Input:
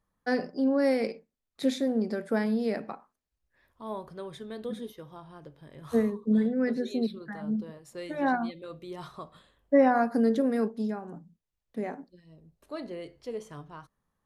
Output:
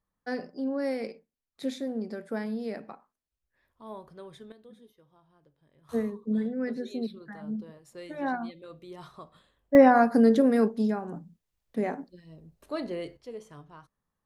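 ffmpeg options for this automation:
-af "asetnsamples=n=441:p=0,asendcmd='4.52 volume volume -16.5dB;5.89 volume volume -4dB;9.75 volume volume 4.5dB;13.17 volume volume -4.5dB',volume=0.531"

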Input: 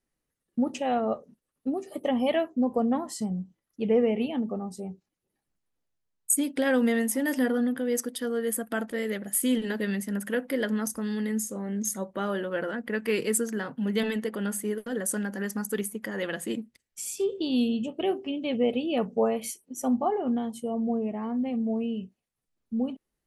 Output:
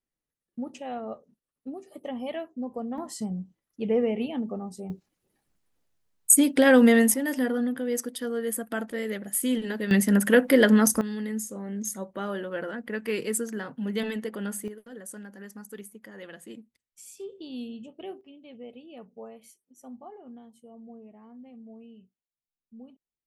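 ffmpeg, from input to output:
-af "asetnsamples=n=441:p=0,asendcmd='2.98 volume volume -1.5dB;4.9 volume volume 7dB;7.14 volume volume -1dB;9.91 volume volume 10dB;11.01 volume volume -2.5dB;14.68 volume volume -12dB;18.21 volume volume -18.5dB',volume=0.376"

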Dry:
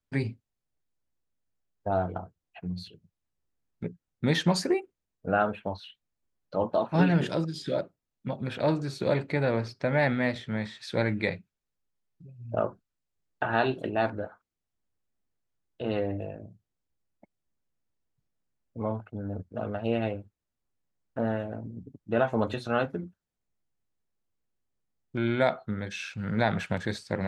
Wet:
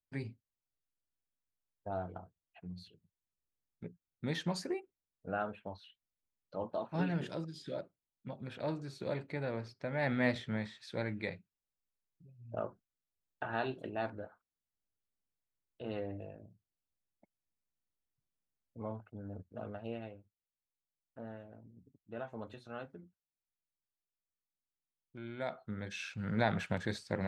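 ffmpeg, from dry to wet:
-af "volume=3.16,afade=t=in:st=9.97:d=0.33:silence=0.354813,afade=t=out:st=10.3:d=0.53:silence=0.398107,afade=t=out:st=19.67:d=0.43:silence=0.421697,afade=t=in:st=25.35:d=0.66:silence=0.237137"

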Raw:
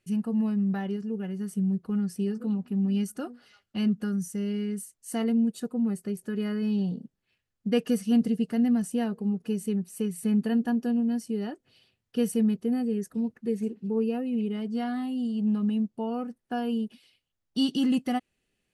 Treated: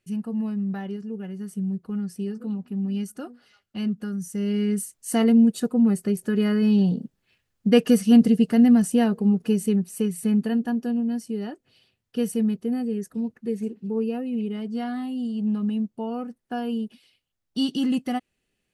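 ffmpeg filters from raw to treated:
-af "volume=2.51,afade=t=in:st=4.19:d=0.54:silence=0.354813,afade=t=out:st=9.37:d=1.25:silence=0.446684"

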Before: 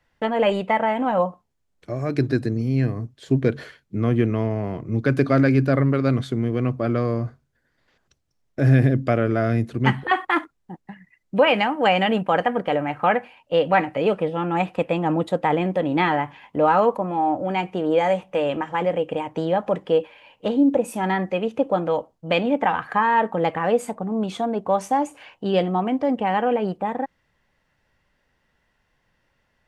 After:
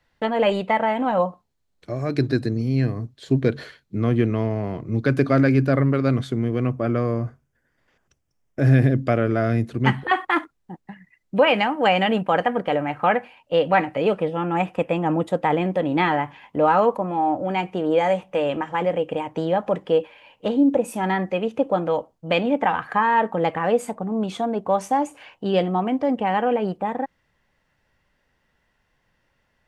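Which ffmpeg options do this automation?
-af "asetnsamples=n=441:p=0,asendcmd='5.12 equalizer g -1;6.67 equalizer g -11;8.61 equalizer g 0.5;14.31 equalizer g -8;15.32 equalizer g -0.5',equalizer=f=4100:t=o:w=0.34:g=5.5"

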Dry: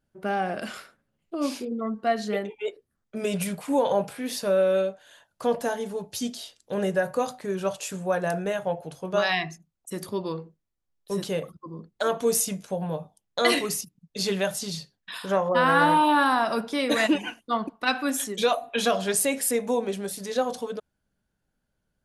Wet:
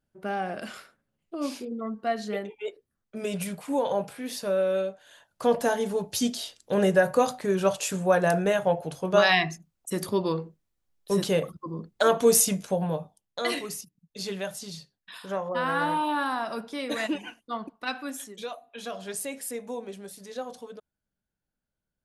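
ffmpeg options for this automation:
-af "volume=3.76,afade=t=in:st=4.84:d=1.07:silence=0.421697,afade=t=out:st=12.64:d=0.77:silence=0.281838,afade=t=out:st=17.86:d=0.8:silence=0.298538,afade=t=in:st=18.66:d=0.46:silence=0.421697"

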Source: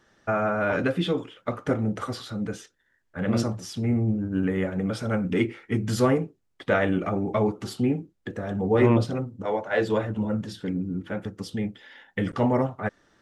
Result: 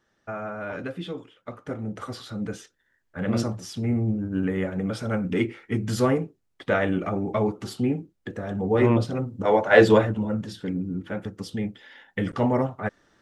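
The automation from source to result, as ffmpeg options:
-af "volume=3.16,afade=t=in:st=1.68:d=0.77:silence=0.398107,afade=t=in:st=9.12:d=0.7:silence=0.298538,afade=t=out:st=9.82:d=0.38:silence=0.316228"

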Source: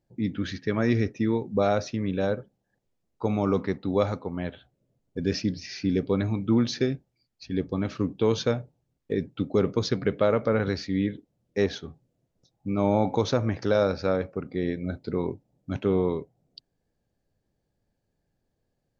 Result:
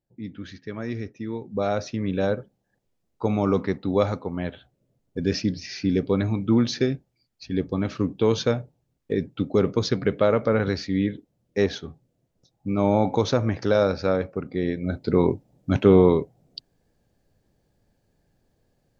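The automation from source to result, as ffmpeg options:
-af "volume=2.82,afade=t=in:st=1.25:d=0.93:silence=0.316228,afade=t=in:st=14.81:d=0.41:silence=0.473151"

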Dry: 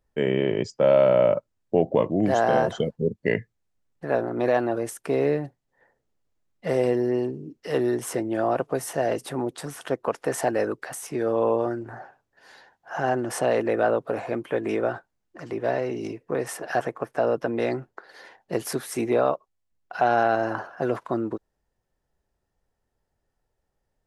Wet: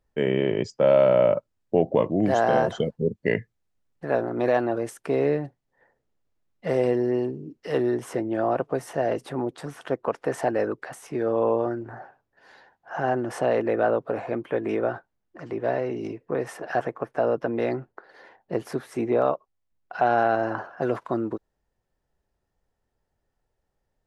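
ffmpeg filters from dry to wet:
-af "asetnsamples=n=441:p=0,asendcmd='4.61 lowpass f 4500;7.82 lowpass f 2500;17.92 lowpass f 1500;19.22 lowpass f 3000;20.81 lowpass f 6800',lowpass=f=7800:p=1"

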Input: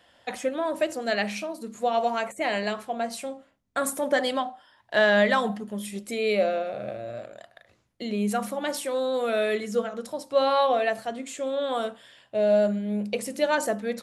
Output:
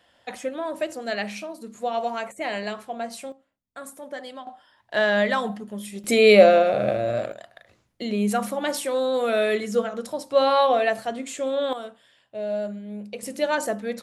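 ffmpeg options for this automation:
-af "asetnsamples=n=441:p=0,asendcmd='3.32 volume volume -12dB;4.47 volume volume -1dB;6.04 volume volume 11dB;7.32 volume volume 3dB;11.73 volume volume -7dB;13.23 volume volume 0dB',volume=0.794"

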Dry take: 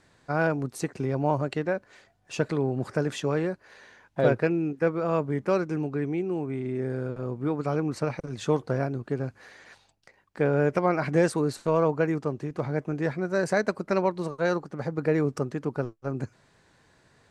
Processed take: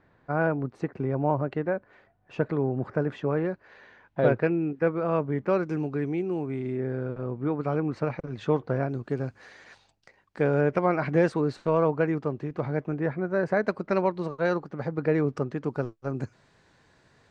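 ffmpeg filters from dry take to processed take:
-af "asetnsamples=n=441:p=0,asendcmd='3.45 lowpass f 2900;5.63 lowpass f 5800;6.75 lowpass f 2800;8.89 lowpass f 7100;10.61 lowpass f 3500;12.94 lowpass f 2000;13.64 lowpass f 3800;15.64 lowpass f 7000',lowpass=1800"

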